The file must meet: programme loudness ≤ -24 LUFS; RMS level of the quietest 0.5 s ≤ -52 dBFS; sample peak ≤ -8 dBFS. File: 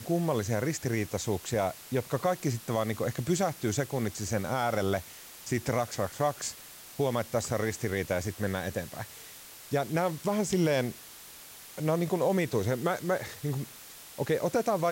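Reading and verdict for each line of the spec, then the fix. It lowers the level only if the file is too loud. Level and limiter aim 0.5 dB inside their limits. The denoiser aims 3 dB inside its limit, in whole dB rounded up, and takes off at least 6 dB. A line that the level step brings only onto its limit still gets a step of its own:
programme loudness -30.5 LUFS: OK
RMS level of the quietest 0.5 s -49 dBFS: fail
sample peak -16.5 dBFS: OK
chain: denoiser 6 dB, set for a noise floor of -49 dBFS

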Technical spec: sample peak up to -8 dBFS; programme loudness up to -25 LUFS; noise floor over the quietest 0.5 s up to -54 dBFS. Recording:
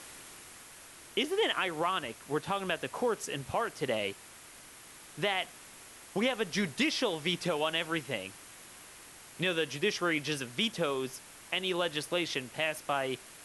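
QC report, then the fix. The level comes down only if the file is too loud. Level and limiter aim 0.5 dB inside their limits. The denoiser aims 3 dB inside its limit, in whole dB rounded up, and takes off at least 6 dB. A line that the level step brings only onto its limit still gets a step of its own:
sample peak -17.0 dBFS: OK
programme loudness -32.5 LUFS: OK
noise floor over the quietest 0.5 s -52 dBFS: fail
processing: denoiser 6 dB, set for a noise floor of -52 dBFS

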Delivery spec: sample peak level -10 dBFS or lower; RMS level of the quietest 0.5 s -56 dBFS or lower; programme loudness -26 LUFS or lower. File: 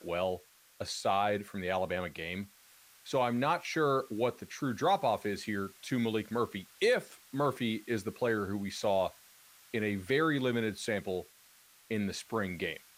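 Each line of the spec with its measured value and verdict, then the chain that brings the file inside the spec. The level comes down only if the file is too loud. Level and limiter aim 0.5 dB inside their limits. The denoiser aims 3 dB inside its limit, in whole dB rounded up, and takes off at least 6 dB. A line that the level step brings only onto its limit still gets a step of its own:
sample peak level -18.0 dBFS: OK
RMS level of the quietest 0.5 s -61 dBFS: OK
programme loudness -33.0 LUFS: OK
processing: none

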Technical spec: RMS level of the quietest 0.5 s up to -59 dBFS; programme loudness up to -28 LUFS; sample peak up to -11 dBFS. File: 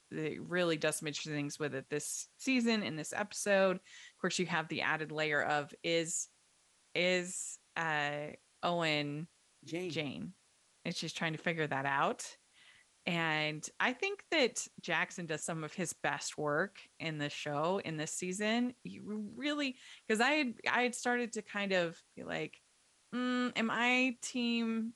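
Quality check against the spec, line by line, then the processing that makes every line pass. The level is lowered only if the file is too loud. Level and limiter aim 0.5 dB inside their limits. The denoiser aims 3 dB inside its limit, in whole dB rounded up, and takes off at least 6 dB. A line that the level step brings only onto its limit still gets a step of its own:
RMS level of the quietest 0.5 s -70 dBFS: OK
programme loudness -35.0 LUFS: OK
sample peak -16.0 dBFS: OK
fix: none

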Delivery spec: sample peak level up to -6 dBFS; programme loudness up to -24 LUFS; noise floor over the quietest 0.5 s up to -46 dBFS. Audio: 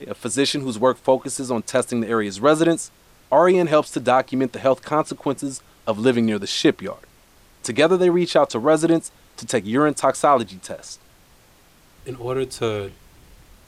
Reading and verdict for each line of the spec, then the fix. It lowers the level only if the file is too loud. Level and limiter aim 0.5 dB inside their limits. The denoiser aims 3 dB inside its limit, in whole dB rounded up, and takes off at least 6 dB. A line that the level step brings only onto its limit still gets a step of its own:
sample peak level -4.0 dBFS: fail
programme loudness -20.0 LUFS: fail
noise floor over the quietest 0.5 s -53 dBFS: OK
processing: gain -4.5 dB

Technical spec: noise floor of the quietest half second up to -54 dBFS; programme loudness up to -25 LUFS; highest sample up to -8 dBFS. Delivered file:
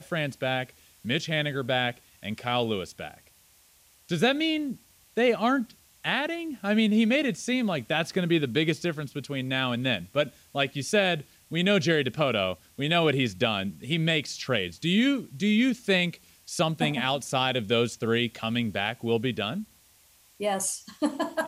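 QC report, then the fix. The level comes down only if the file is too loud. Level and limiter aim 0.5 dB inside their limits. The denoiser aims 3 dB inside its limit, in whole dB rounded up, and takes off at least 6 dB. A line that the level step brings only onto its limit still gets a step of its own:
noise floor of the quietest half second -60 dBFS: OK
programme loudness -27.0 LUFS: OK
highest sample -10.5 dBFS: OK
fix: none

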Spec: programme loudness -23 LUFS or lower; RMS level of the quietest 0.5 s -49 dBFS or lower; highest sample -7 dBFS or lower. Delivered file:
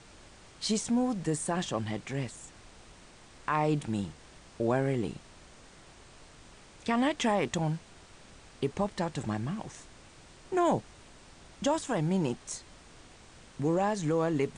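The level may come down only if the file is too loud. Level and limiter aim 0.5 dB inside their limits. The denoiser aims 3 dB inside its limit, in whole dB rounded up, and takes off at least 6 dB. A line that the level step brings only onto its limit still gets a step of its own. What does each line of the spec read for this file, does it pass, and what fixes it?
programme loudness -31.5 LUFS: OK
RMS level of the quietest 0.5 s -54 dBFS: OK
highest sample -16.0 dBFS: OK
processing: none

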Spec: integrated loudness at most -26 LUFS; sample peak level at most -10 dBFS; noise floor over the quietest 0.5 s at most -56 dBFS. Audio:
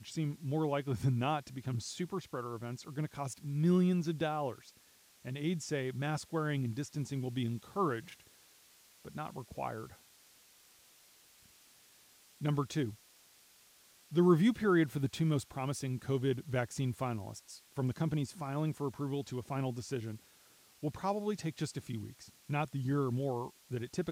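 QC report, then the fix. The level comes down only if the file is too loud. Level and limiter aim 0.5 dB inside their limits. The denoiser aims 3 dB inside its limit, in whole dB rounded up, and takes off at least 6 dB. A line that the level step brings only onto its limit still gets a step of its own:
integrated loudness -35.5 LUFS: OK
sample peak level -15.5 dBFS: OK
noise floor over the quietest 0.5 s -64 dBFS: OK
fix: none

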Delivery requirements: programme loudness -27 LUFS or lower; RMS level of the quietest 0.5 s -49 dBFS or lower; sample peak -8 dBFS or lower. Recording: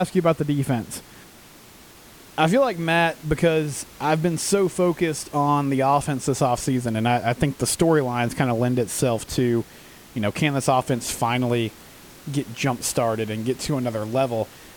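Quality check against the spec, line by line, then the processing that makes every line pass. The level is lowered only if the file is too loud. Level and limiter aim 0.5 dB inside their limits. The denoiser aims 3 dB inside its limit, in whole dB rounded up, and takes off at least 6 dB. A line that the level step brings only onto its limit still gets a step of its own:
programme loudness -22.5 LUFS: fail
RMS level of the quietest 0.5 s -47 dBFS: fail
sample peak -5.5 dBFS: fail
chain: gain -5 dB

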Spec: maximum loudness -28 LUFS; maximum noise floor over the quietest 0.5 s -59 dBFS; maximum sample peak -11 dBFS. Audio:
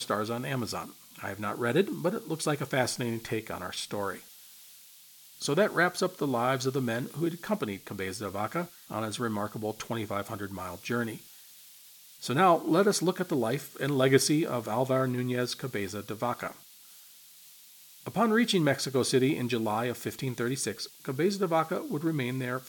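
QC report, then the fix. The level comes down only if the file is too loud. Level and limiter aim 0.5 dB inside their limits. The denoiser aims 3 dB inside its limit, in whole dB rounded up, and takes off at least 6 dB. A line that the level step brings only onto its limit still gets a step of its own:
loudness -30.0 LUFS: OK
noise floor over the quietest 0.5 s -54 dBFS: fail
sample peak -8.5 dBFS: fail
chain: denoiser 8 dB, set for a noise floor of -54 dBFS; limiter -11.5 dBFS

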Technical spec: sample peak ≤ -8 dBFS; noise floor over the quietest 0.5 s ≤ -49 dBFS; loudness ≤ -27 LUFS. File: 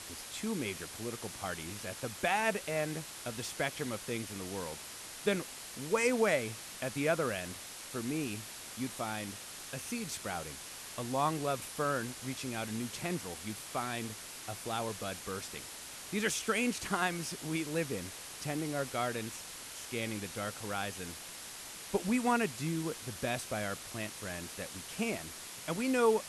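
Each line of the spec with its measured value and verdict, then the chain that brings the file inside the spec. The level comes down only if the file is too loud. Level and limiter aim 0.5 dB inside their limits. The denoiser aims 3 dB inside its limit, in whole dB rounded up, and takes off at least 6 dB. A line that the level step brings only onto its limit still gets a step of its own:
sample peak -17.5 dBFS: OK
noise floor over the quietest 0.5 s -47 dBFS: fail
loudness -36.0 LUFS: OK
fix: denoiser 6 dB, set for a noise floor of -47 dBFS

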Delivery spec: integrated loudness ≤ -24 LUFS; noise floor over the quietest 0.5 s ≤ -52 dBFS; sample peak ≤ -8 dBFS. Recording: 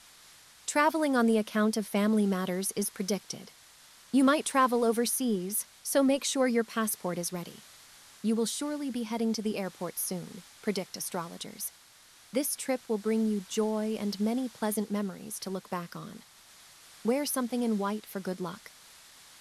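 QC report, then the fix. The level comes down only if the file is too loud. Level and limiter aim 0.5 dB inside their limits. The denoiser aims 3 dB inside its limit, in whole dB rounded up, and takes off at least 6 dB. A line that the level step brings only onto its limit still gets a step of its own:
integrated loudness -30.0 LUFS: OK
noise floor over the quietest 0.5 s -57 dBFS: OK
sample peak -12.0 dBFS: OK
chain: none

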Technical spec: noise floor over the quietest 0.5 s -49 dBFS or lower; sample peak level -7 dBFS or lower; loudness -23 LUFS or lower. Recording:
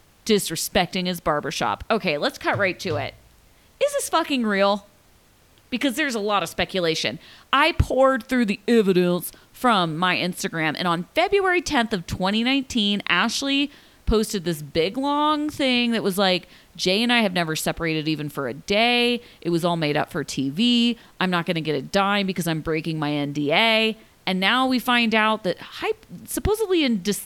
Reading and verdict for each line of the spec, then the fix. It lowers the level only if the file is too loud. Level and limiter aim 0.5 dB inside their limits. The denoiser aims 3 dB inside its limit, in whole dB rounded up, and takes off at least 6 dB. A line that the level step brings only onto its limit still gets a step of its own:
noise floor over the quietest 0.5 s -56 dBFS: OK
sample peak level -4.0 dBFS: fail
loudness -22.0 LUFS: fail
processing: gain -1.5 dB; limiter -7.5 dBFS

